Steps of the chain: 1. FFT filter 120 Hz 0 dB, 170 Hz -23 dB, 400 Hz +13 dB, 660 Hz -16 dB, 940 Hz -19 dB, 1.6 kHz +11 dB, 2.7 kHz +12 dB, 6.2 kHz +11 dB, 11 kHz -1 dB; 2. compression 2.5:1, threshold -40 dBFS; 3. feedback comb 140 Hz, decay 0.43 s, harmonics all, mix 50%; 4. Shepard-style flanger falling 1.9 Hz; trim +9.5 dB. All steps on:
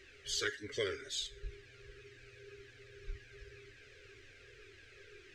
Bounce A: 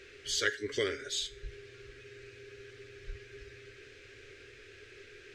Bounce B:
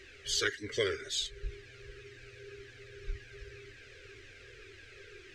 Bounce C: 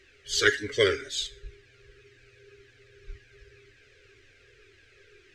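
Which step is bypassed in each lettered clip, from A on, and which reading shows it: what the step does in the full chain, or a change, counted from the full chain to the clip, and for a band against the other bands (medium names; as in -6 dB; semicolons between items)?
4, loudness change +4.5 LU; 3, loudness change +5.0 LU; 2, mean gain reduction 8.5 dB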